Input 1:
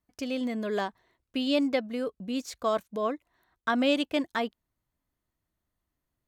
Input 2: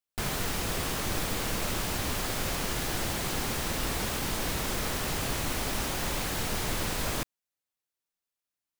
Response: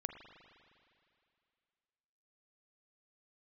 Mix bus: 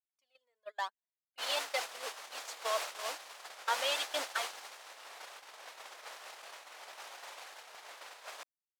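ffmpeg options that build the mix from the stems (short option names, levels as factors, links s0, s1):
-filter_complex "[0:a]aphaser=in_gain=1:out_gain=1:delay=2.3:decay=0.66:speed=0.95:type=triangular,volume=0.447[s0];[1:a]aemphasis=mode=reproduction:type=50fm,adelay=1200,volume=0.75[s1];[s0][s1]amix=inputs=2:normalize=0,highpass=f=600:w=0.5412,highpass=f=600:w=1.3066,agate=range=0.0224:threshold=0.0141:ratio=16:detection=peak,adynamicequalizer=threshold=0.00224:dfrequency=3600:dqfactor=0.7:tfrequency=3600:tqfactor=0.7:attack=5:release=100:ratio=0.375:range=3:mode=boostabove:tftype=highshelf"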